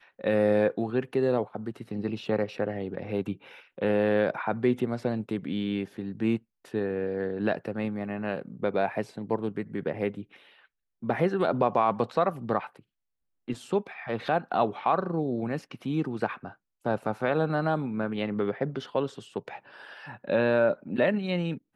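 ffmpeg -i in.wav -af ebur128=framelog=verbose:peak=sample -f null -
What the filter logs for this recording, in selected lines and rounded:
Integrated loudness:
  I:         -29.0 LUFS
  Threshold: -39.4 LUFS
Loudness range:
  LRA:         2.5 LU
  Threshold: -49.8 LUFS
  LRA low:   -31.2 LUFS
  LRA high:  -28.7 LUFS
Sample peak:
  Peak:      -10.3 dBFS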